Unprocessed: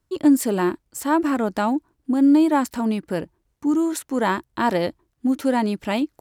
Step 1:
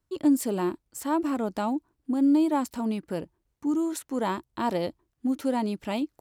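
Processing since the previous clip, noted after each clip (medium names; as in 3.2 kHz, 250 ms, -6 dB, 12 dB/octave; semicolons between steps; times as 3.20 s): dynamic bell 1.7 kHz, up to -7 dB, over -42 dBFS, Q 2.2; trim -6 dB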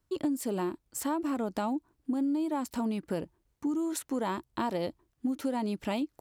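compression 6:1, threshold -30 dBFS, peak gain reduction 12.5 dB; trim +2 dB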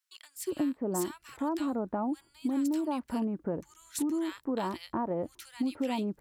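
bands offset in time highs, lows 360 ms, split 1.5 kHz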